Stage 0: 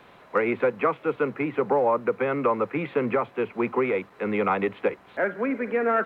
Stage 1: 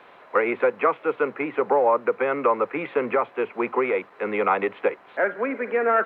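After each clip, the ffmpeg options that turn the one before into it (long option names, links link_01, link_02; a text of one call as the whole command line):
ffmpeg -i in.wav -af "bass=frequency=250:gain=-15,treble=frequency=4000:gain=-11,volume=3.5dB" out.wav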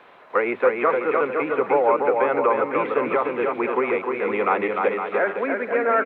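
ffmpeg -i in.wav -af "aecho=1:1:300|510|657|759.9|831.9:0.631|0.398|0.251|0.158|0.1" out.wav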